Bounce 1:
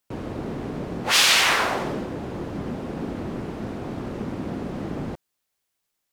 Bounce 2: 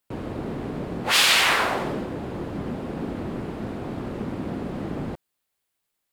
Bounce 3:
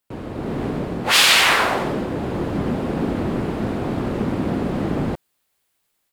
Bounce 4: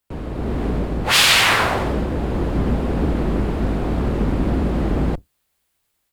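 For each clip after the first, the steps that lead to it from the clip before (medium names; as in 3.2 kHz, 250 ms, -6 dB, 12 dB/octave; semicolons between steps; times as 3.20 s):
peaking EQ 5.9 kHz -5 dB 0.48 oct
level rider gain up to 8 dB
octave divider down 2 oct, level +3 dB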